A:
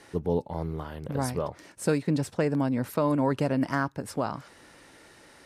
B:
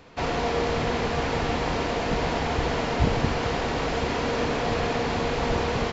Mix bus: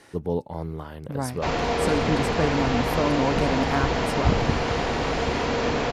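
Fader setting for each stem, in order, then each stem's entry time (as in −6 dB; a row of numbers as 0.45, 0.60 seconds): +0.5, +1.5 decibels; 0.00, 1.25 seconds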